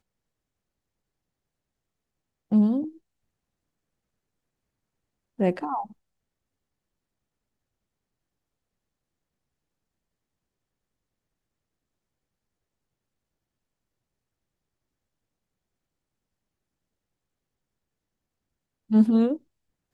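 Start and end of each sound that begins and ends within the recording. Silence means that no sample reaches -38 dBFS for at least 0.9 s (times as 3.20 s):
2.52–2.89 s
5.39–5.86 s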